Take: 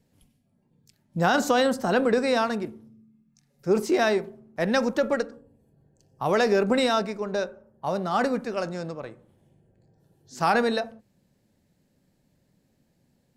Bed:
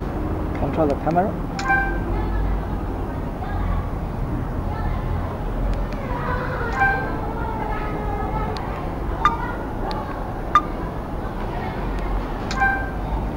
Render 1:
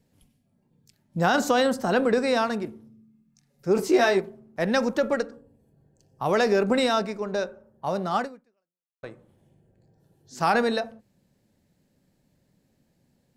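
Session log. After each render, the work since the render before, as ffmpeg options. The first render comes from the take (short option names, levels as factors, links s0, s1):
-filter_complex "[0:a]asettb=1/sr,asplit=3[s0][s1][s2];[s0]atrim=end=3.764[s3];[s1]atrim=start=3.76:end=4.2,asetpts=PTS-STARTPTS,afade=t=in:d=0.004:c=qsin,afade=t=out:st=0.436:d=0.004:c=qsin,asplit=2[s4][s5];[s5]adelay=16,volume=0.708[s6];[s4][s6]amix=inputs=2:normalize=0,atrim=end_sample=19404[s7];[s2]atrim=start=4.196[s8];[s3][s7]acrossfade=d=0.004:c1=hsin:c2=qsin[s9];[s9][s8]acrossfade=d=0.004:c1=qsin:c2=hsin,asplit=2[s10][s11];[s10]atrim=end=9.03,asetpts=PTS-STARTPTS,afade=t=out:st=8.17:d=0.86:c=exp[s12];[s11]atrim=start=9.03,asetpts=PTS-STARTPTS,afade=t=in:d=0.004:c=hsin[s13];[s12][s13]concat=n=2:v=0:a=1"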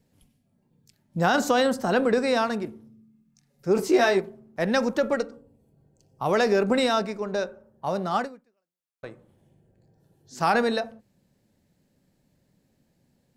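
-filter_complex "[0:a]asettb=1/sr,asplit=3[s0][s1][s2];[s0]atrim=end=5.174[s3];[s1]atrim=start=5.17:end=6.26,asetpts=PTS-STARTPTS,afade=t=in:d=0.004:c=qsin,afade=t=out:st=1.086:d=0.004:c=qsin,asuperstop=centerf=1700:order=8:qfactor=7.3[s4];[s2]atrim=start=6.256[s5];[s3][s4]acrossfade=d=0.004:c1=hsin:c2=qsin[s6];[s6][s5]acrossfade=d=0.004:c1=qsin:c2=hsin"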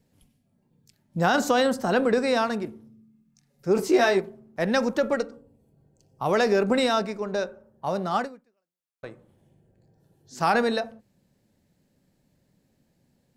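-af anull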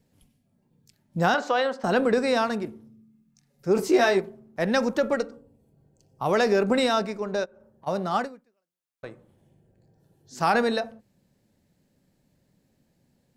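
-filter_complex "[0:a]asettb=1/sr,asplit=3[s0][s1][s2];[s0]atrim=end=1.344[s3];[s1]atrim=start=1.34:end=1.84,asetpts=PTS-STARTPTS,afade=t=in:d=0.004:c=qsin,afade=t=out:st=0.496:d=0.004:c=qsin,highpass=490,lowpass=3400[s4];[s2]atrim=start=1.836[s5];[s3][s4]acrossfade=d=0.004:c1=hsin:c2=qsin[s6];[s6][s5]acrossfade=d=0.004:c1=qsin:c2=hsin,asplit=3[s7][s8][s9];[s7]afade=t=out:st=7.44:d=0.02[s10];[s8]acompressor=threshold=0.00355:ratio=5:attack=3.2:release=140:knee=1:detection=peak,afade=t=in:st=7.44:d=0.02,afade=t=out:st=7.86:d=0.02[s11];[s9]afade=t=in:st=7.86:d=0.02[s12];[s10][s11][s12]amix=inputs=3:normalize=0"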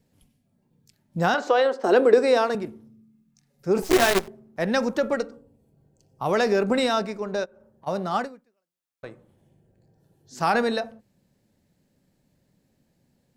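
-filter_complex "[0:a]asettb=1/sr,asplit=3[s0][s1][s2];[s0]atrim=end=1.474[s3];[s1]atrim=start=1.47:end=2.55,asetpts=PTS-STARTPTS,afade=t=in:d=0.004:c=qsin,afade=t=out:st=1.076:d=0.004:c=qsin,highpass=f=370:t=q:w=3.3[s4];[s2]atrim=start=2.546[s5];[s3][s4]acrossfade=d=0.004:c1=hsin:c2=qsin[s6];[s6][s5]acrossfade=d=0.004:c1=qsin:c2=hsin,asettb=1/sr,asplit=3[s7][s8][s9];[s7]atrim=end=3.824[s10];[s8]atrim=start=3.82:end=4.28,asetpts=PTS-STARTPTS,afade=t=in:d=0.004:c=qsin,afade=t=out:st=0.456:d=0.004:c=qsin,acrusher=bits=4:dc=4:mix=0:aa=0.000001[s11];[s9]atrim=start=4.276[s12];[s10][s11]acrossfade=d=0.004:c1=hsin:c2=qsin[s13];[s13][s12]acrossfade=d=0.004:c1=qsin:c2=hsin"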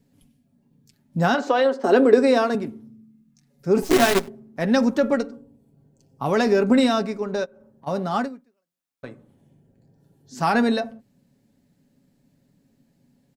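-af "equalizer=f=230:t=o:w=0.62:g=9.5,aecho=1:1:7.2:0.41"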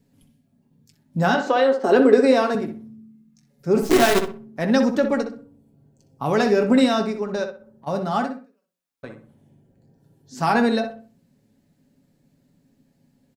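-filter_complex "[0:a]asplit=2[s0][s1];[s1]adelay=19,volume=0.224[s2];[s0][s2]amix=inputs=2:normalize=0,asplit=2[s3][s4];[s4]adelay=63,lowpass=f=2500:p=1,volume=0.447,asplit=2[s5][s6];[s6]adelay=63,lowpass=f=2500:p=1,volume=0.3,asplit=2[s7][s8];[s8]adelay=63,lowpass=f=2500:p=1,volume=0.3,asplit=2[s9][s10];[s10]adelay=63,lowpass=f=2500:p=1,volume=0.3[s11];[s3][s5][s7][s9][s11]amix=inputs=5:normalize=0"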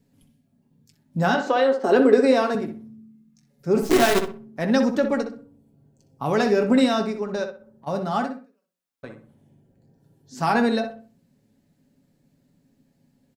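-af "volume=0.841"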